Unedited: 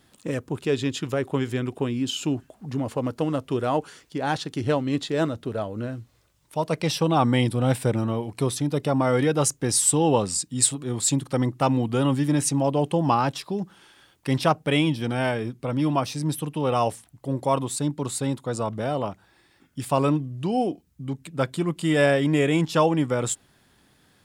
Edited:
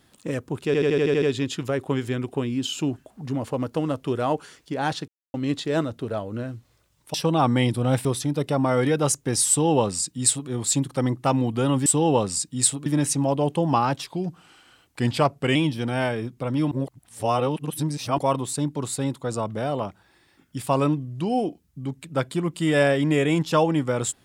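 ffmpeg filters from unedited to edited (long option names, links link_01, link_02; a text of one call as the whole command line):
ffmpeg -i in.wav -filter_complex "[0:a]asplit=18[link_01][link_02][link_03][link_04][link_05][link_06][link_07][link_08][link_09][link_10][link_11][link_12][link_13][link_14][link_15][link_16][link_17][link_18];[link_01]atrim=end=0.742[link_19];[link_02]atrim=start=0.658:end=0.742[link_20];[link_03]atrim=start=0.658:end=0.742[link_21];[link_04]atrim=start=0.658:end=0.742[link_22];[link_05]atrim=start=0.658:end=0.742[link_23];[link_06]atrim=start=0.658:end=0.742[link_24];[link_07]atrim=start=0.658:end=0.742[link_25];[link_08]atrim=start=0.658:end=4.52,asetpts=PTS-STARTPTS,afade=type=out:start_time=3.858:duration=0.004:curve=hsin[link_26];[link_09]atrim=start=4.52:end=4.78,asetpts=PTS-STARTPTS,volume=0[link_27];[link_10]atrim=start=4.78:end=6.582,asetpts=PTS-STARTPTS,afade=type=in:duration=0.004:curve=hsin[link_28];[link_11]atrim=start=6.908:end=7.822[link_29];[link_12]atrim=start=8.408:end=12.222[link_30];[link_13]atrim=start=9.848:end=10.852[link_31];[link_14]atrim=start=12.218:end=13.434[link_32];[link_15]atrim=start=13.43:end=14.78,asetpts=PTS-STARTPTS,asetrate=40131,aresample=44100,atrim=end_sample=65423,asetpts=PTS-STARTPTS[link_33];[link_16]atrim=start=14.776:end=15.942[link_34];[link_17]atrim=start=15.938:end=17.412,asetpts=PTS-STARTPTS,areverse[link_35];[link_18]atrim=start=17.408[link_36];[link_19][link_20]acrossfade=duration=0.004:curve1=hsin:curve2=hsin[link_37];[link_37][link_21]acrossfade=duration=0.004:curve1=hsin:curve2=hsin[link_38];[link_38][link_22]acrossfade=duration=0.004:curve1=hsin:curve2=hsin[link_39];[link_39][link_23]acrossfade=duration=0.004:curve1=hsin:curve2=hsin[link_40];[link_40][link_24]acrossfade=duration=0.004:curve1=hsin:curve2=hsin[link_41];[link_41][link_25]acrossfade=duration=0.004:curve1=hsin:curve2=hsin[link_42];[link_26][link_27][link_28]concat=n=3:v=0:a=1[link_43];[link_42][link_43]acrossfade=duration=0.004:curve1=hsin:curve2=hsin[link_44];[link_44][link_29]acrossfade=duration=0.004:curve1=hsin:curve2=hsin[link_45];[link_45][link_30]acrossfade=duration=0.004:curve1=hsin:curve2=hsin[link_46];[link_46][link_31]acrossfade=duration=0.004:curve1=hsin:curve2=hsin[link_47];[link_47][link_32]acrossfade=duration=0.004:curve1=hsin:curve2=hsin[link_48];[link_48][link_33]acrossfade=duration=0.004:curve1=hsin:curve2=hsin[link_49];[link_49][link_34]acrossfade=duration=0.004:curve1=hsin:curve2=hsin[link_50];[link_50][link_35]acrossfade=duration=0.004:curve1=hsin:curve2=hsin[link_51];[link_51][link_36]acrossfade=duration=0.004:curve1=hsin:curve2=hsin" out.wav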